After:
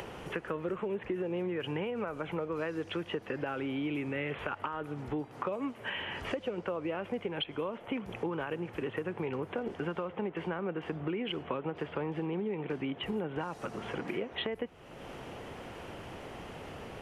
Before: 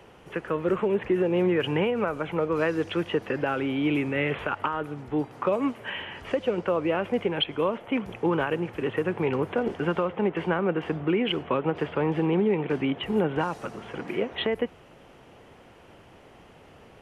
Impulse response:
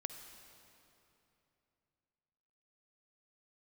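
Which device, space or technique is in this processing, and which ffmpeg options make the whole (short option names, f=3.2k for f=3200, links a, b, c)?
upward and downward compression: -af "acompressor=mode=upward:threshold=-39dB:ratio=2.5,acompressor=threshold=-36dB:ratio=4,volume=2dB"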